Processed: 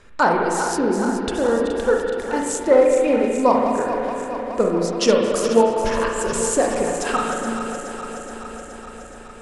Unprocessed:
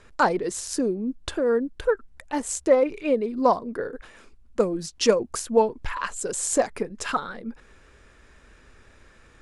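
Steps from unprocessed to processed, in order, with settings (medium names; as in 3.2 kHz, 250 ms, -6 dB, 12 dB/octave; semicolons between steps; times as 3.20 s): backward echo that repeats 211 ms, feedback 83%, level -9.5 dB; spring tank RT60 1.8 s, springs 35/53 ms, chirp 75 ms, DRR 0.5 dB; trim +2 dB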